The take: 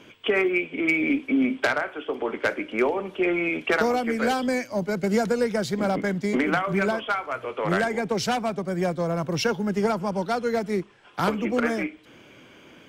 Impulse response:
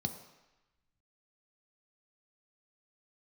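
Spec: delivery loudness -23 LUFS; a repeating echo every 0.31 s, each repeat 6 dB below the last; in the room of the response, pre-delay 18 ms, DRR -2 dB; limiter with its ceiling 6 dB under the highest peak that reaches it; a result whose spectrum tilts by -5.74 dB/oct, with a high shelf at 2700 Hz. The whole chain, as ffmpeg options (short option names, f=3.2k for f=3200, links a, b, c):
-filter_complex "[0:a]highshelf=f=2.7k:g=-4,alimiter=limit=-17dB:level=0:latency=1,aecho=1:1:310|620|930|1240|1550|1860:0.501|0.251|0.125|0.0626|0.0313|0.0157,asplit=2[a][b];[1:a]atrim=start_sample=2205,adelay=18[c];[b][c]afir=irnorm=-1:irlink=0,volume=0.5dB[d];[a][d]amix=inputs=2:normalize=0,volume=-6dB"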